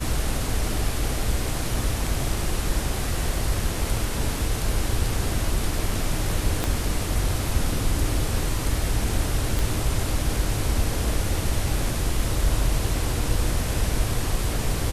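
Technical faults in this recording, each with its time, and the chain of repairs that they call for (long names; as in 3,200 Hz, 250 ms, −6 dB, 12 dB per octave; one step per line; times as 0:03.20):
0:06.64: click −9 dBFS
0:09.59: click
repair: click removal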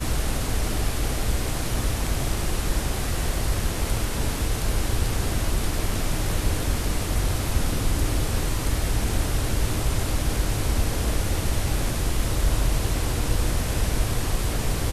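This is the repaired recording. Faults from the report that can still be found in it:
0:06.64: click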